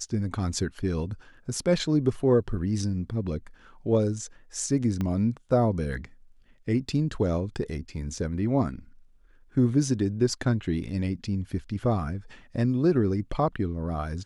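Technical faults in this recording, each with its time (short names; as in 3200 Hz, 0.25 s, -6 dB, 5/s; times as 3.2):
5.01 pop -18 dBFS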